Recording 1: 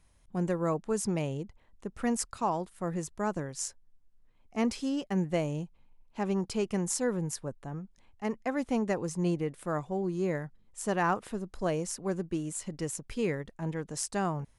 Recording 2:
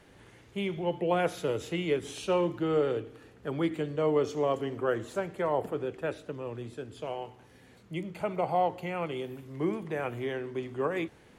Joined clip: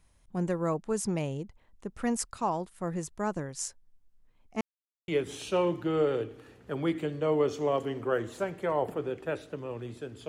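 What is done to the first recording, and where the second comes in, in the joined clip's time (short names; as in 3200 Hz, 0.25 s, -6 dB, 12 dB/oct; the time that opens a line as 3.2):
recording 1
4.61–5.08 mute
5.08 switch to recording 2 from 1.84 s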